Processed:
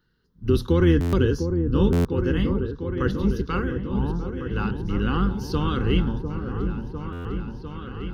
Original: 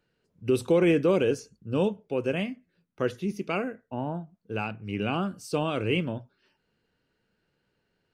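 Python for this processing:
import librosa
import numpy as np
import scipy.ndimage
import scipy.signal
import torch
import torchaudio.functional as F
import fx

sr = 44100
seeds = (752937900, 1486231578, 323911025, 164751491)

p1 = fx.octave_divider(x, sr, octaves=2, level_db=-1.0)
p2 = fx.fixed_phaser(p1, sr, hz=2400.0, stages=6)
p3 = p2 + fx.echo_opening(p2, sr, ms=701, hz=750, octaves=1, feedback_pct=70, wet_db=-6, dry=0)
p4 = fx.buffer_glitch(p3, sr, at_s=(1.0, 1.92, 7.12), block=512, repeats=10)
y = p4 * librosa.db_to_amplitude(6.0)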